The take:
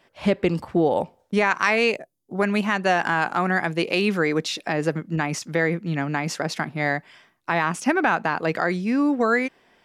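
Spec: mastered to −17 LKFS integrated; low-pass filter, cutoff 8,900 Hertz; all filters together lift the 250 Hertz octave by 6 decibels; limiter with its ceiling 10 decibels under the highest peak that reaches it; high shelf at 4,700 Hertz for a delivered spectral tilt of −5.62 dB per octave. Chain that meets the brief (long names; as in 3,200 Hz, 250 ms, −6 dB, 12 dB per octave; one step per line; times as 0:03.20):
low-pass filter 8,900 Hz
parametric band 250 Hz +8 dB
high-shelf EQ 4,700 Hz −5.5 dB
level +8 dB
brickwall limiter −6.5 dBFS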